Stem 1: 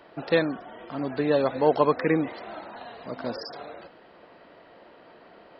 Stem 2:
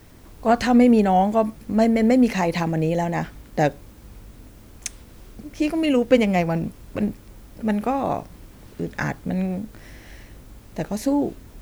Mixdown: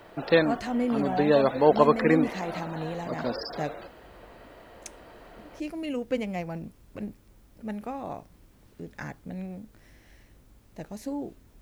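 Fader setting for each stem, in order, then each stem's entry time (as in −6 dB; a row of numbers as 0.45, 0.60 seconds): +1.5, −12.5 decibels; 0.00, 0.00 seconds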